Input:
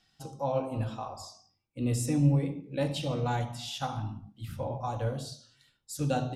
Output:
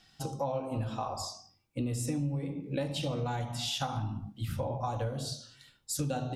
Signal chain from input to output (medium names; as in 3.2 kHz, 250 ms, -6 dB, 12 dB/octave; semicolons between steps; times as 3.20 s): compression 8:1, threshold -37 dBFS, peak gain reduction 18 dB; trim +7 dB